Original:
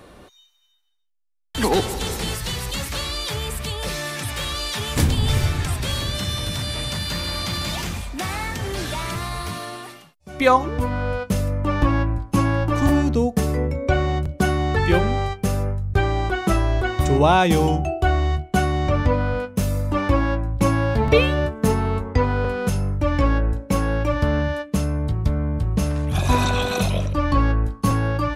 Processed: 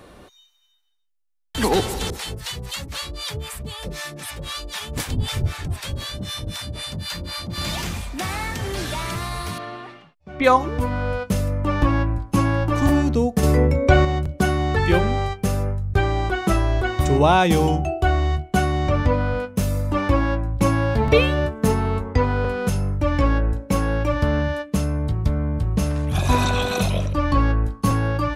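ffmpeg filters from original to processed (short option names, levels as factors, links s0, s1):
-filter_complex "[0:a]asettb=1/sr,asplit=3[s0][s1][s2];[s0]atrim=end=2.104[s3];[s1]atrim=start=2.1:end=7.58,asetpts=PTS-STARTPTS,afade=t=in:d=0.004:c=qsin,afade=t=out:st=5.476:d=0.004:c=qsin,acrossover=split=630[s4][s5];[s4]aeval=exprs='val(0)*(1-1/2+1/2*cos(2*PI*3.9*n/s))':c=same[s6];[s5]aeval=exprs='val(0)*(1-1/2-1/2*cos(2*PI*3.9*n/s))':c=same[s7];[s6][s7]amix=inputs=2:normalize=0[s8];[s2]atrim=start=7.576[s9];[s3][s8]acrossfade=d=0.004:c1=hsin:c2=qsin[s10];[s10][s9]acrossfade=d=0.004:c1=qsin:c2=hsin,asettb=1/sr,asplit=3[s11][s12][s13];[s11]atrim=end=9.584[s14];[s12]atrim=start=9.58:end=10.44,asetpts=PTS-STARTPTS,afade=t=in:d=0.004:c=qsin,afade=t=out:st=0.856:d=0.004:c=qsin,lowpass=2800[s15];[s13]atrim=start=10.436[s16];[s14][s15]acrossfade=d=0.004:c1=hsin:c2=qsin[s17];[s17][s16]acrossfade=d=0.004:c1=qsin:c2=hsin,asettb=1/sr,asplit=3[s18][s19][s20];[s18]atrim=end=13.434[s21];[s19]atrim=start=13.43:end=14.05,asetpts=PTS-STARTPTS,afade=t=in:d=0.004:c=qsin,afade=t=out:st=0.616:d=0.004:c=qsin,acontrast=51[s22];[s20]atrim=start=14.046[s23];[s21][s22]acrossfade=d=0.004:c1=hsin:c2=qsin[s24];[s24][s23]acrossfade=d=0.004:c1=qsin:c2=hsin"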